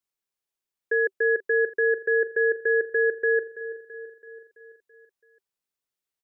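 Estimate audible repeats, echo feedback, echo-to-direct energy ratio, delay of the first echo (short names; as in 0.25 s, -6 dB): 5, 57%, -13.0 dB, 0.332 s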